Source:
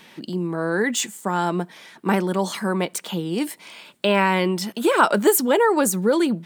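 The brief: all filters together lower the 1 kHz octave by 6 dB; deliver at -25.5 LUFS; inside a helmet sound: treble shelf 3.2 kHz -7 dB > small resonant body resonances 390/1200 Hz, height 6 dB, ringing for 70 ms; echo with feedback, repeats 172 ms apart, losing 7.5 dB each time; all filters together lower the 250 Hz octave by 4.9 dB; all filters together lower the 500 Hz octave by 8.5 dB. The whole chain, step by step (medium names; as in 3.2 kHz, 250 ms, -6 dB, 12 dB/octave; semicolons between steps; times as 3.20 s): peaking EQ 250 Hz -4 dB; peaking EQ 500 Hz -8.5 dB; peaking EQ 1 kHz -4 dB; treble shelf 3.2 kHz -7 dB; feedback delay 172 ms, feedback 42%, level -7.5 dB; small resonant body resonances 390/1200 Hz, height 6 dB, ringing for 70 ms; trim +0.5 dB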